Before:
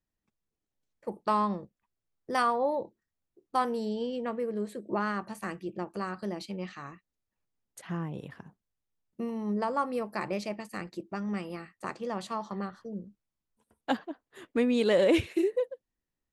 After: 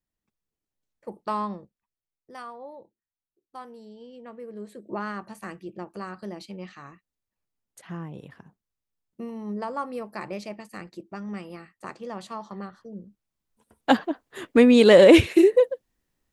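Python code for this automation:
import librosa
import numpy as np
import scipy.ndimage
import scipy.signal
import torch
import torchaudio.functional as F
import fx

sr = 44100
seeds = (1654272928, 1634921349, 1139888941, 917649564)

y = fx.gain(x, sr, db=fx.line((1.46, -1.5), (2.34, -13.5), (3.97, -13.5), (4.92, -1.5), (12.93, -1.5), (13.98, 11.0)))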